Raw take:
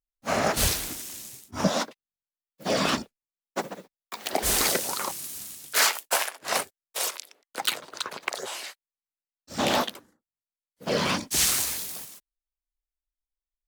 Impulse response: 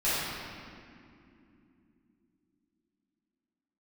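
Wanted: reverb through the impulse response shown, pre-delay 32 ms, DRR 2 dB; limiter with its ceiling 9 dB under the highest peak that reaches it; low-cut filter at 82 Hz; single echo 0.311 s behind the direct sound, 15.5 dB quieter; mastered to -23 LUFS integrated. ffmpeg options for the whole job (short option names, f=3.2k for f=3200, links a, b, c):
-filter_complex "[0:a]highpass=82,alimiter=limit=-18.5dB:level=0:latency=1,aecho=1:1:311:0.168,asplit=2[a][b];[1:a]atrim=start_sample=2205,adelay=32[c];[b][c]afir=irnorm=-1:irlink=0,volume=-14.5dB[d];[a][d]amix=inputs=2:normalize=0,volume=7dB"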